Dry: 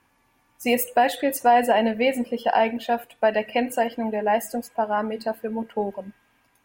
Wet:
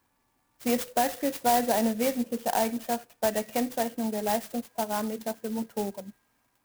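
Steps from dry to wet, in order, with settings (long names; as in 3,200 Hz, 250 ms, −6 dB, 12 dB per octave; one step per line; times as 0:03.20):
dynamic equaliser 180 Hz, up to +6 dB, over −40 dBFS, Q 1
converter with an unsteady clock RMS 0.078 ms
level −7 dB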